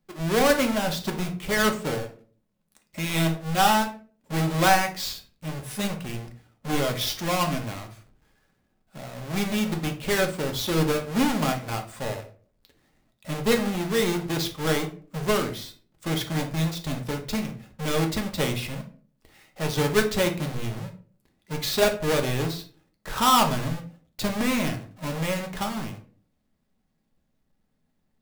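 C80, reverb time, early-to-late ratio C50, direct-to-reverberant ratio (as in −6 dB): 16.5 dB, 0.45 s, 11.5 dB, 3.0 dB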